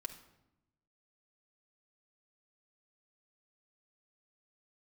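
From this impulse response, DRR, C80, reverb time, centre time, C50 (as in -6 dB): 2.5 dB, 13.5 dB, 0.90 s, 12 ms, 10.5 dB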